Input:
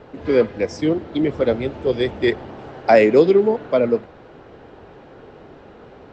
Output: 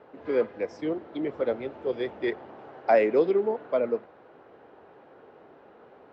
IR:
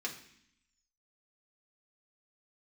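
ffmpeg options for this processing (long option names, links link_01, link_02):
-af "bandpass=frequency=860:width_type=q:width=0.53:csg=0,volume=-7dB"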